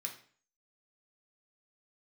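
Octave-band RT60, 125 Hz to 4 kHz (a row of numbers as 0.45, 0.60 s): 0.50, 0.50, 0.45, 0.45, 0.45, 0.40 s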